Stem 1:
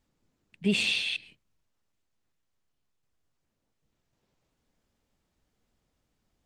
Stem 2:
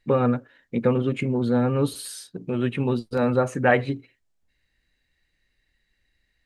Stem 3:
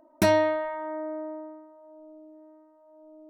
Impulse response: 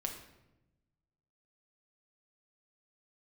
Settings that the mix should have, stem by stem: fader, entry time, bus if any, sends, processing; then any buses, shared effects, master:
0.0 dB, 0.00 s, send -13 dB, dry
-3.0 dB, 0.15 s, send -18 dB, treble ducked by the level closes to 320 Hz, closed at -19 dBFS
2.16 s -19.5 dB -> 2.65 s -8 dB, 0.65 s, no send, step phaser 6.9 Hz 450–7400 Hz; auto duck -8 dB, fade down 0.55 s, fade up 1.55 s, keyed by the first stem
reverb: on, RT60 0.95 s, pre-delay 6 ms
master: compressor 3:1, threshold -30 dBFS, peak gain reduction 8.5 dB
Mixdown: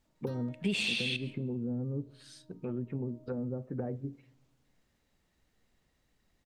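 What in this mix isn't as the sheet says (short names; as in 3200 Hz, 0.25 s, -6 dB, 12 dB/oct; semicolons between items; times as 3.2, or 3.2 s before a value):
stem 2 -3.0 dB -> -11.0 dB; stem 3: entry 0.65 s -> 0.05 s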